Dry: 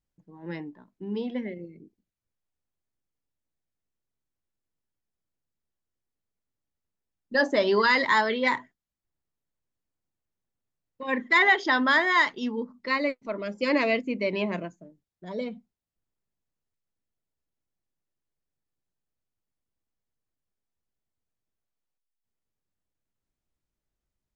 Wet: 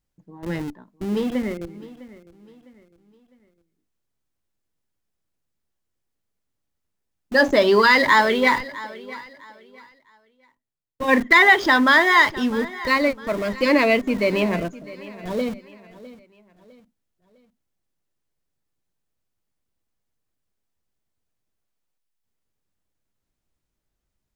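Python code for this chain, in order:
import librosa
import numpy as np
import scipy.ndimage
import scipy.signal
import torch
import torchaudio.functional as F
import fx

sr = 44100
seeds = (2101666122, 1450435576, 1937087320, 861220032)

p1 = fx.schmitt(x, sr, flips_db=-37.5)
p2 = x + F.gain(torch.from_numpy(p1), -10.5).numpy()
p3 = fx.echo_feedback(p2, sr, ms=655, feedback_pct=39, wet_db=-18)
p4 = fx.band_widen(p3, sr, depth_pct=40, at=(8.56, 11.33))
y = F.gain(torch.from_numpy(p4), 6.0).numpy()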